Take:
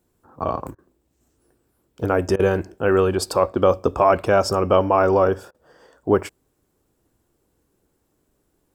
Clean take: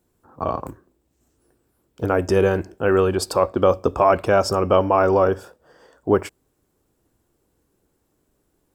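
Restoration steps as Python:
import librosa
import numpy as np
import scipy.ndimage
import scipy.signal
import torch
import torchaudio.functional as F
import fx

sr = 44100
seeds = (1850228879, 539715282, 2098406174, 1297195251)

y = fx.fix_interpolate(x, sr, at_s=(0.75, 2.36, 5.51), length_ms=33.0)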